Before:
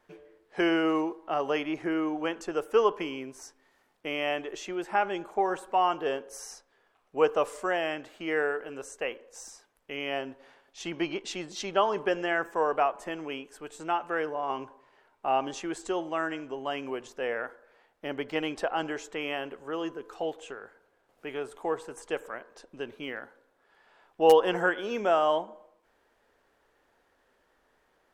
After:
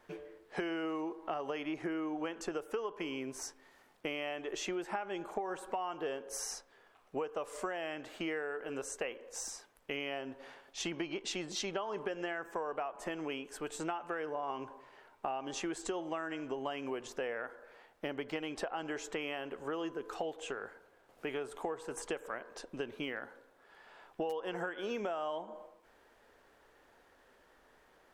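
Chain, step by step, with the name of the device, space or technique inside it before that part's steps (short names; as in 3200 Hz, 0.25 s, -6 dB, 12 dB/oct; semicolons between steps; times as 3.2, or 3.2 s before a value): serial compression, leveller first (compressor 2.5:1, threshold -27 dBFS, peak gain reduction 9 dB; compressor 6:1, threshold -39 dBFS, peak gain reduction 15.5 dB); gain +4 dB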